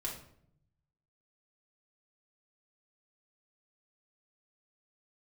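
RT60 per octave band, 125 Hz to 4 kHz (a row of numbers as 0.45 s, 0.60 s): 1.4 s, 1.0 s, 0.75 s, 0.60 s, 0.50 s, 0.45 s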